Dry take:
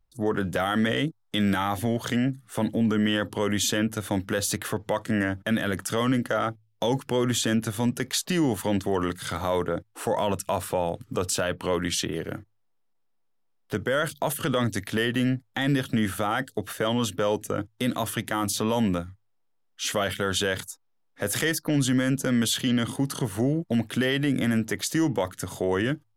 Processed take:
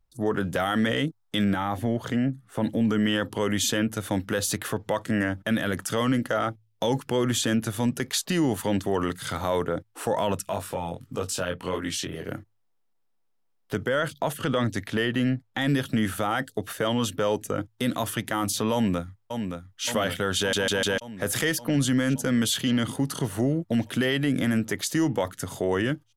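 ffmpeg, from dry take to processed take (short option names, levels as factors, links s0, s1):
-filter_complex "[0:a]asettb=1/sr,asplit=3[s0][s1][s2];[s0]atrim=end=1.444[s3];[s1]atrim=start=1.44:end=2.64,asetpts=PTS-STARTPTS,afade=t=in:d=0.004:c=qsin,afade=t=out:st=1.196:d=0.004:c=qsin,highshelf=f=2200:g=-9.5[s4];[s2]atrim=start=2.636[s5];[s3][s4]acrossfade=d=0.004:c1=hsin:c2=qsin[s6];[s6][s5]acrossfade=d=0.004:c1=qsin:c2=hsin,asplit=3[s7][s8][s9];[s7]afade=t=out:st=10.46:d=0.02[s10];[s8]flanger=delay=19:depth=4:speed=1.6,afade=t=in:st=10.46:d=0.02,afade=t=out:st=12.24:d=0.02[s11];[s9]afade=t=in:st=12.24:d=0.02[s12];[s10][s11][s12]amix=inputs=3:normalize=0,asettb=1/sr,asplit=3[s13][s14][s15];[s13]atrim=end=13.884[s16];[s14]atrim=start=13.88:end=15.58,asetpts=PTS-STARTPTS,afade=t=in:d=0.004:c=qsin,afade=t=out:st=1.696:d=0.004:c=qsin,highshelf=f=7600:g=-10[s17];[s15]atrim=start=15.576[s18];[s16][s17]acrossfade=d=0.004:c1=hsin:c2=qsin[s19];[s19][s18]acrossfade=d=0.004:c1=qsin:c2=hsin,asplit=2[s20][s21];[s21]afade=t=in:st=18.73:d=0.01,afade=t=out:st=19.85:d=0.01,aecho=0:1:570|1140|1710|2280|2850|3420|3990|4560|5130|5700|6270:0.473151|0.331206|0.231844|0.162291|0.113604|0.0795225|0.0556658|0.038966|0.0272762|0.0190934|0.0133654[s22];[s20][s22]amix=inputs=2:normalize=0,asplit=5[s23][s24][s25][s26][s27];[s23]atrim=end=20.532[s28];[s24]atrim=start=20.378:end=20.532[s29];[s25]atrim=start=20.378:end=20.532[s30];[s26]atrim=start=20.378:end=20.532[s31];[s27]atrim=start=20.978[s32];[s28][s29]acrossfade=d=0.004:c1=hsin:c2=hsin[s33];[s33][s30]acrossfade=d=0.004:c1=hsin:c2=hsin[s34];[s34][s31]acrossfade=d=0.004:c1=hsin:c2=hsin[s35];[s35][s32]acrossfade=d=0.004:c1=hsin:c2=hsin"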